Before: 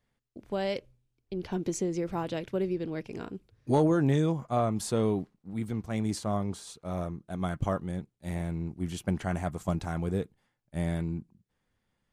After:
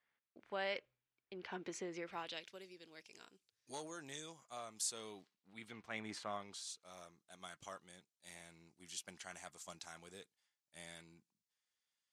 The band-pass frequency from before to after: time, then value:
band-pass, Q 1.1
1.95 s 1800 Hz
2.63 s 6800 Hz
4.9 s 6800 Hz
6.15 s 1700 Hz
6.7 s 5900 Hz

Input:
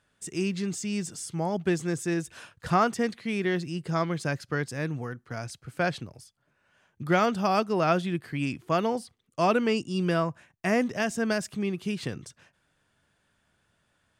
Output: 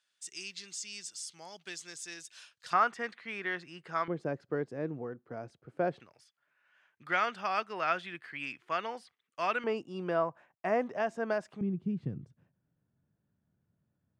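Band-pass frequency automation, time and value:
band-pass, Q 1.2
4800 Hz
from 2.73 s 1500 Hz
from 4.08 s 440 Hz
from 6 s 1900 Hz
from 9.64 s 770 Hz
from 11.61 s 150 Hz

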